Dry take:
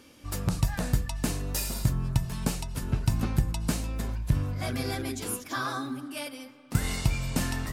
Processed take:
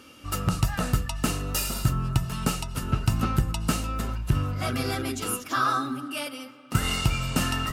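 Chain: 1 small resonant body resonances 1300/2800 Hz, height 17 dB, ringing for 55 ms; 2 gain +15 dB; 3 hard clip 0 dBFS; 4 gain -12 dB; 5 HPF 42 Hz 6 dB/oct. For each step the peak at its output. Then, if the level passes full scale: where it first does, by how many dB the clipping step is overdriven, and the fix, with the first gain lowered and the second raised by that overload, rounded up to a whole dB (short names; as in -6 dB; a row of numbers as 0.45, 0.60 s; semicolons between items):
-10.5, +4.5, 0.0, -12.0, -10.0 dBFS; step 2, 4.5 dB; step 2 +10 dB, step 4 -7 dB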